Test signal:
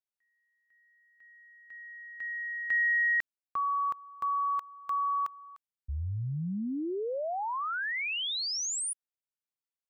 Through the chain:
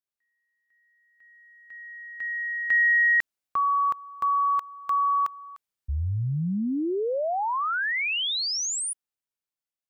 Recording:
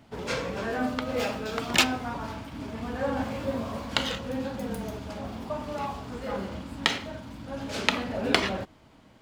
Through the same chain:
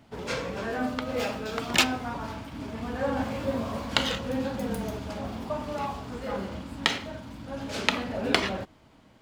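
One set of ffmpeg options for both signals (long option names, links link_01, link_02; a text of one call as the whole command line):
ffmpeg -i in.wav -af "dynaudnorm=framelen=480:gausssize=7:maxgain=7.5dB,volume=-1dB" out.wav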